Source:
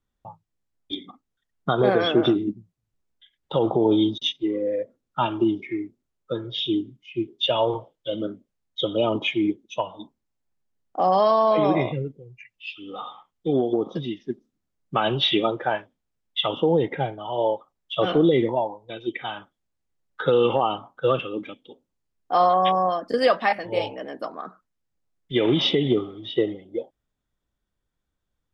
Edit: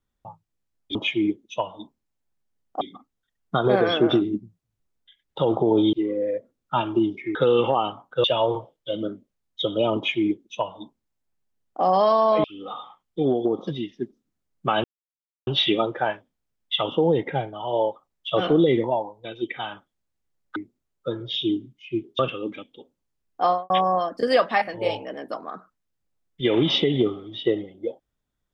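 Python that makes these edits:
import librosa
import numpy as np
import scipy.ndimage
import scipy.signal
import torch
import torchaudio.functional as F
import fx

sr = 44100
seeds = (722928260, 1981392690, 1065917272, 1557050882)

y = fx.studio_fade_out(x, sr, start_s=22.33, length_s=0.28)
y = fx.edit(y, sr, fx.cut(start_s=4.07, length_s=0.31),
    fx.swap(start_s=5.8, length_s=1.63, other_s=20.21, other_length_s=0.89),
    fx.duplicate(start_s=9.15, length_s=1.86, to_s=0.95),
    fx.cut(start_s=11.63, length_s=1.09),
    fx.insert_silence(at_s=15.12, length_s=0.63), tone=tone)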